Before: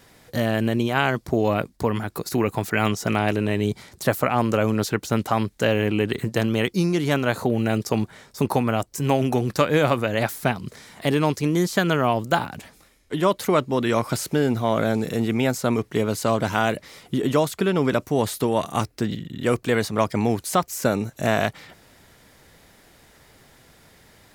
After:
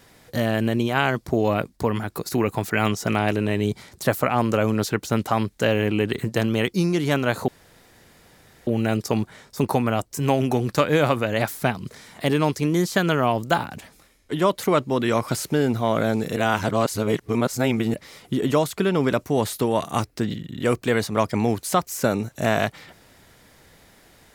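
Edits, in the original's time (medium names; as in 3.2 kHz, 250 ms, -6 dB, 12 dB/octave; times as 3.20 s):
7.48 s: insert room tone 1.19 s
15.17–16.75 s: reverse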